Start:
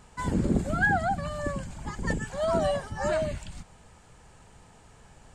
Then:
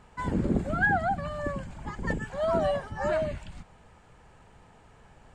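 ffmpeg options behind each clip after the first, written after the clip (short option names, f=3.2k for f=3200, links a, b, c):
-af "bass=f=250:g=-2,treble=f=4k:g=-11"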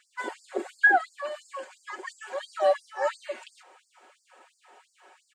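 -af "aecho=1:1:5.4:0.84,afftfilt=real='re*gte(b*sr/1024,250*pow(4500/250,0.5+0.5*sin(2*PI*2.9*pts/sr)))':imag='im*gte(b*sr/1024,250*pow(4500/250,0.5+0.5*sin(2*PI*2.9*pts/sr)))':win_size=1024:overlap=0.75,volume=2dB"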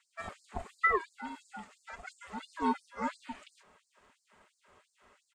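-af "aeval=exprs='val(0)*sin(2*PI*330*n/s)':c=same,volume=-5dB"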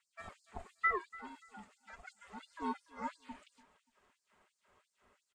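-af "flanger=delay=0.1:depth=2.9:regen=79:speed=0.59:shape=sinusoidal,aecho=1:1:290|580:0.1|0.028,volume=-3dB"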